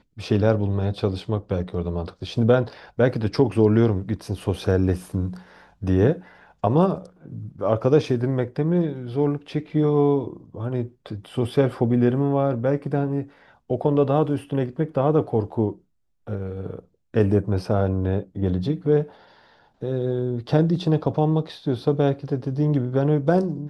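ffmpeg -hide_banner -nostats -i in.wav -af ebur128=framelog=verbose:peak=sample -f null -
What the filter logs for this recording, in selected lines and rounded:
Integrated loudness:
  I:         -22.9 LUFS
  Threshold: -33.4 LUFS
Loudness range:
  LRA:         2.3 LU
  Threshold: -43.4 LUFS
  LRA low:   -24.6 LUFS
  LRA high:  -22.2 LUFS
Sample peak:
  Peak:       -4.5 dBFS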